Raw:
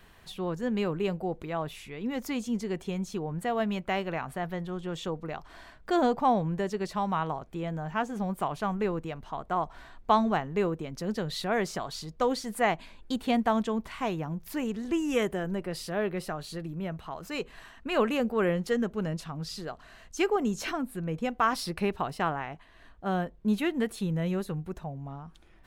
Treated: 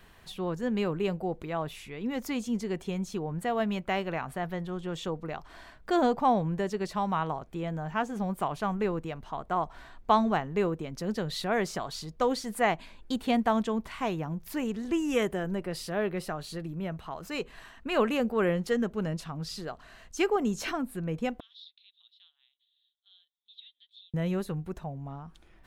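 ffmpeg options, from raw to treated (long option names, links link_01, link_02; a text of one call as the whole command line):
ffmpeg -i in.wav -filter_complex "[0:a]asettb=1/sr,asplit=3[link_01][link_02][link_03];[link_01]atrim=end=21.404[link_04];[link_02]atrim=start=21.4:end=24.14,asetpts=PTS-STARTPTS,afade=type=in:duration=0.004:curve=qsin,afade=type=out:start_time=2.736:duration=0.004:curve=qsin,asuperpass=centerf=3600:order=4:qfactor=7.3[link_05];[link_03]atrim=start=24.136[link_06];[link_04][link_05]acrossfade=duration=0.004:curve1=hsin:curve2=qsin[link_07];[link_07][link_06]acrossfade=duration=0.004:curve1=qsin:curve2=hsin" out.wav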